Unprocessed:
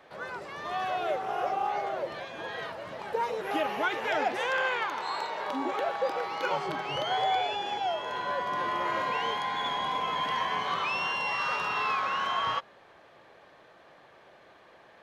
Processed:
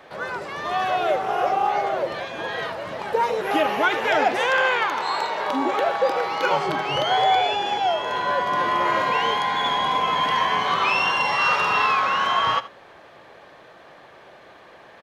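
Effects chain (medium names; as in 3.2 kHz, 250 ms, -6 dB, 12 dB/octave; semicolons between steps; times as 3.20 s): 10.77–11.86 s: doubling 46 ms -5 dB; delay 77 ms -16.5 dB; trim +8.5 dB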